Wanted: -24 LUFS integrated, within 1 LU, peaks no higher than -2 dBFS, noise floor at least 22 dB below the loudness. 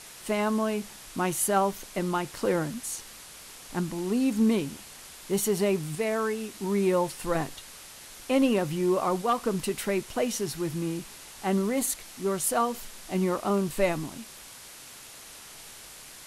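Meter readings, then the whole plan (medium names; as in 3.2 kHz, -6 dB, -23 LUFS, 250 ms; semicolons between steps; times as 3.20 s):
noise floor -47 dBFS; noise floor target -50 dBFS; loudness -28.0 LUFS; peak level -13.0 dBFS; loudness target -24.0 LUFS
-> noise reduction 6 dB, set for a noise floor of -47 dBFS; trim +4 dB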